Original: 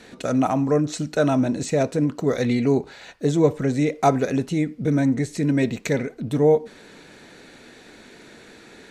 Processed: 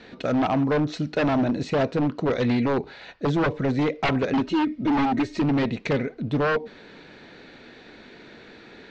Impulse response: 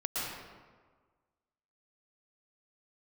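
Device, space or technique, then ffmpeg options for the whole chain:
synthesiser wavefolder: -filter_complex "[0:a]asettb=1/sr,asplit=3[a][b][c];[a]atrim=end=4.334[d];[b]atrim=start=4.33:end=5.42,asetpts=PTS-STARTPTS,afade=t=in:d=0.004:c=qsin,afade=t=out:st=1.086:d=0.004:c=qsin,aecho=1:1:3.2:0.92,atrim=end_sample=48069[e];[c]atrim=start=5.416[f];[d][e]acrossfade=d=0.004:c1=hsin:c2=qsin[g];[g][f]acrossfade=d=0.004:c1=qsin:c2=hsin,aeval=exprs='0.15*(abs(mod(val(0)/0.15+3,4)-2)-1)':c=same,lowpass=f=4.6k:w=0.5412,lowpass=f=4.6k:w=1.3066"

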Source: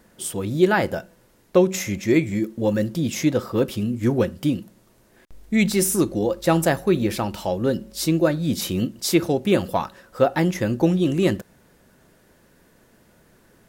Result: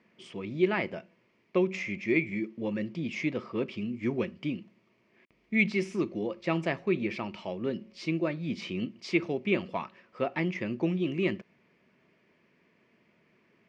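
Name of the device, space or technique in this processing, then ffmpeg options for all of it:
kitchen radio: -filter_complex "[0:a]asettb=1/sr,asplit=3[a][b][c];[a]atrim=end=3.774[d];[b]atrim=start=3.77:end=4.31,asetpts=PTS-STARTPTS,afade=t=in:d=0.004:c=qsin,afade=t=out:st=0.536:d=0.004:c=qsin,highshelf=f=6.4k:g=6[e];[c]atrim=start=4.306[f];[d][e]acrossfade=d=0.004:c1=hsin:c2=qsin[g];[g][f]acrossfade=d=0.004:c1=qsin:c2=hsin,highpass=200,equalizer=f=290:t=q:w=4:g=-5,equalizer=f=520:t=q:w=4:g=-8,equalizer=f=800:t=q:w=4:g=-9,equalizer=f=1.5k:t=q:w=4:g=-10,equalizer=f=2.3k:t=q:w=4:g=9,equalizer=f=3.8k:t=q:w=4:g=-10,lowpass=f=4.1k:w=0.5412,lowpass=f=4.1k:w=1.3066,volume=-5.5dB"

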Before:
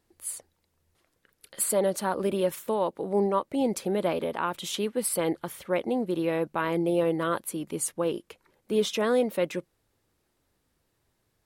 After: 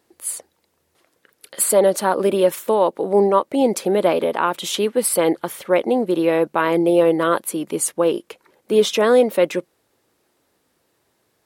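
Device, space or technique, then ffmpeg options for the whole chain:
filter by subtraction: -filter_complex "[0:a]asplit=2[a][b];[b]lowpass=420,volume=-1[c];[a][c]amix=inputs=2:normalize=0,volume=8.5dB"

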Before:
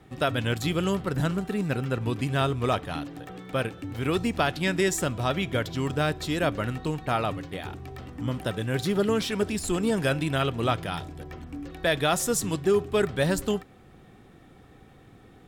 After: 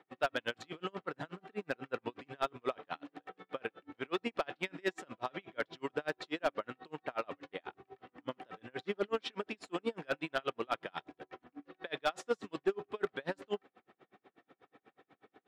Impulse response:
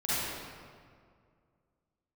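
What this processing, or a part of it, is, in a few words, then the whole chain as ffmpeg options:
helicopter radio: -af "highpass=330,lowpass=2.9k,lowshelf=f=410:g=-4,aeval=exprs='val(0)*pow(10,-38*(0.5-0.5*cos(2*PI*8.2*n/s))/20)':c=same,asoftclip=type=hard:threshold=-23dB"

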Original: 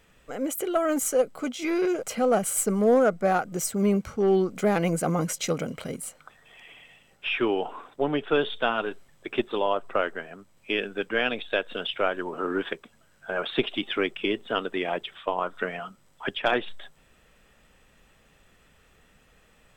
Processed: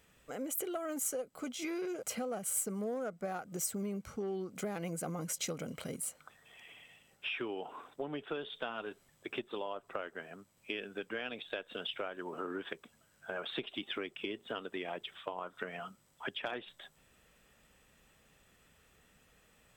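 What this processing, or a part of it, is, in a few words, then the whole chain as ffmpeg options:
ASMR close-microphone chain: -af "highpass=f=75:p=1,lowshelf=f=150:g=4,acompressor=threshold=-29dB:ratio=6,highshelf=f=6k:g=7.5,volume=-7dB"

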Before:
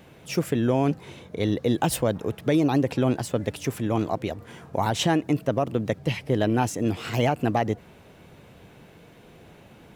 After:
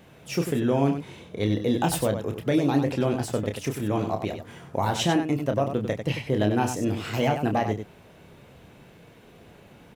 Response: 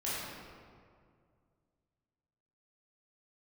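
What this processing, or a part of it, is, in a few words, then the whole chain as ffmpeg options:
slapback doubling: -filter_complex "[0:a]asplit=3[a][b][c];[b]adelay=29,volume=-6.5dB[d];[c]adelay=96,volume=-8dB[e];[a][d][e]amix=inputs=3:normalize=0,volume=-2dB"

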